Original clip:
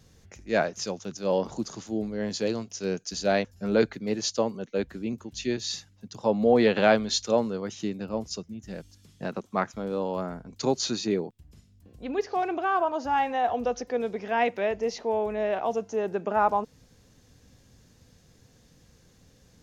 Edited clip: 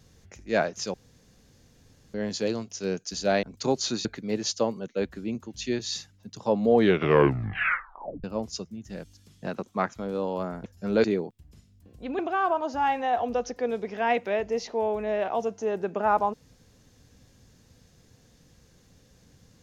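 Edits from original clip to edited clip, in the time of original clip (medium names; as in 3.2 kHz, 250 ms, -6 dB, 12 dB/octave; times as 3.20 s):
0.94–2.14 s: room tone
3.43–3.83 s: swap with 10.42–11.04 s
6.49 s: tape stop 1.53 s
12.19–12.50 s: delete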